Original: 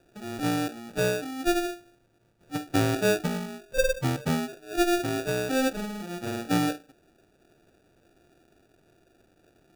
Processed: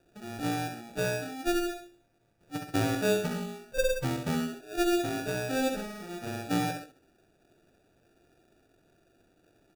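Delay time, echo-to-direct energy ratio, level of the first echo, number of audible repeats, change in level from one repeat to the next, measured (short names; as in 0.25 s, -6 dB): 66 ms, -5.0 dB, -6.0 dB, 2, -6.0 dB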